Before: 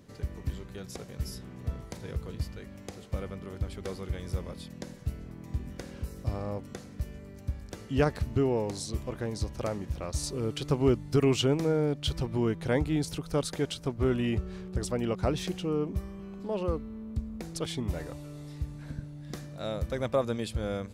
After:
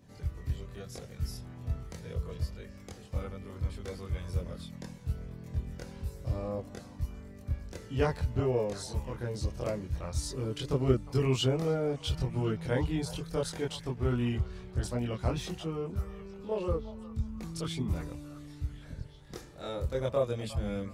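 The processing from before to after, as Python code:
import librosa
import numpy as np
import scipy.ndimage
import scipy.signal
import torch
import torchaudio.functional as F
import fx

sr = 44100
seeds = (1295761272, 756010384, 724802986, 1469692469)

y = fx.echo_stepped(x, sr, ms=358, hz=890.0, octaves=0.7, feedback_pct=70, wet_db=-11.0)
y = fx.chorus_voices(y, sr, voices=4, hz=0.16, base_ms=24, depth_ms=1.2, mix_pct=55)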